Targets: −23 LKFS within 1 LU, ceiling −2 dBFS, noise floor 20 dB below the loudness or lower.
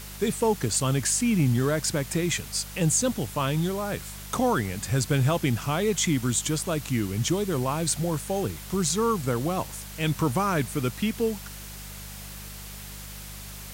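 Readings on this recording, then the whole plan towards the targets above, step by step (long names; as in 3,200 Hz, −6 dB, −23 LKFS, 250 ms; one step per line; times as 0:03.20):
mains hum 50 Hz; hum harmonics up to 200 Hz; level of the hum −41 dBFS; background noise floor −40 dBFS; target noise floor −46 dBFS; integrated loudness −26.0 LKFS; sample peak −12.5 dBFS; target loudness −23.0 LKFS
→ hum removal 50 Hz, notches 4
broadband denoise 6 dB, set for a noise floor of −40 dBFS
level +3 dB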